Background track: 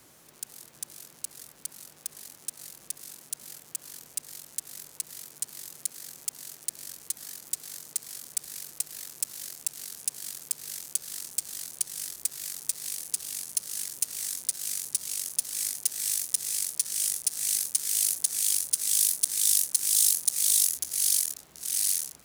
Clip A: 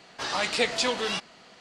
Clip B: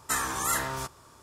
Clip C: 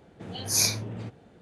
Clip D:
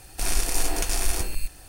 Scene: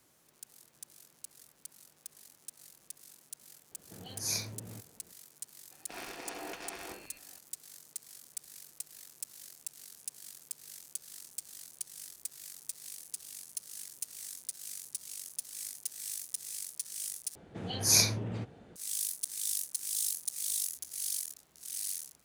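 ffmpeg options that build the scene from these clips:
-filter_complex "[3:a]asplit=2[a][b];[0:a]volume=-11dB[c];[4:a]highpass=240,lowpass=3.1k[d];[c]asplit=2[e][f];[e]atrim=end=17.354[g];[b]atrim=end=1.41,asetpts=PTS-STARTPTS,volume=-0.5dB[h];[f]atrim=start=18.756[i];[a]atrim=end=1.41,asetpts=PTS-STARTPTS,volume=-10.5dB,afade=t=in:d=0.004:c=hsin,afade=t=out:st=1.406:d=0.004:c=hsin,adelay=3710[j];[d]atrim=end=1.68,asetpts=PTS-STARTPTS,volume=-9.5dB,afade=t=in:d=0.004:c=hsin,afade=t=out:st=1.676:d=0.004:c=hsin,adelay=5710[k];[g][h]acrossfade=d=0.004:c1=hsin:c2=hsin[l];[l][i]acrossfade=d=0.004:c1=hsin:c2=hsin[m];[m][j][k]amix=inputs=3:normalize=0"

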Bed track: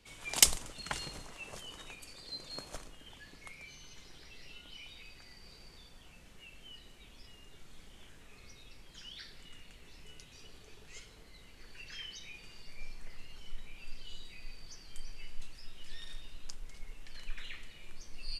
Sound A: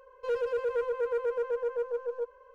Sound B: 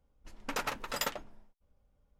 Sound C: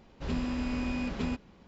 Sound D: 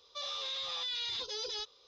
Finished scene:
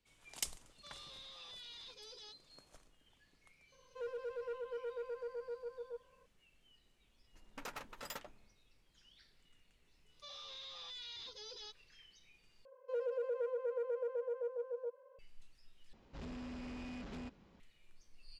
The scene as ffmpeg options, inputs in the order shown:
-filter_complex "[4:a]asplit=2[a][b];[1:a]asplit=2[c][d];[0:a]volume=-17dB[e];[2:a]aeval=exprs='0.0668*(abs(mod(val(0)/0.0668+3,4)-2)-1)':c=same[f];[d]highpass=f=560:t=q:w=5.3[g];[3:a]asoftclip=type=tanh:threshold=-35.5dB[h];[e]asplit=3[i][j][k];[i]atrim=end=12.654[l];[g]atrim=end=2.54,asetpts=PTS-STARTPTS,volume=-15.5dB[m];[j]atrim=start=15.186:end=15.934[n];[h]atrim=end=1.67,asetpts=PTS-STARTPTS,volume=-8dB[o];[k]atrim=start=17.596[p];[a]atrim=end=1.87,asetpts=PTS-STARTPTS,volume=-15.5dB,afade=t=in:d=0.004:c=hsin,afade=t=out:st=1.866:d=0.004:c=hsin,adelay=680[q];[c]atrim=end=2.54,asetpts=PTS-STARTPTS,volume=-13dB,afade=t=in:d=0.004:c=hsin,afade=t=out:st=2.536:d=0.004:c=hsin,adelay=3720[r];[f]atrim=end=2.19,asetpts=PTS-STARTPTS,volume=-12dB,afade=t=in:d=0.004:c=hsin,afade=t=out:st=2.186:d=0.004:c=hsin,adelay=7090[s];[b]atrim=end=1.87,asetpts=PTS-STARTPTS,volume=-12dB,afade=t=in:d=0.1,afade=t=out:st=1.77:d=0.1,adelay=10070[t];[l][m]acrossfade=d=0.004:c1=hsin:c2=hsin[u];[u][n]acrossfade=d=0.004:c1=hsin:c2=hsin[v];[v][o]acrossfade=d=0.004:c1=hsin:c2=hsin[w];[w][p]acrossfade=d=0.004:c1=hsin:c2=hsin[x];[x][q][r][s][t]amix=inputs=5:normalize=0"

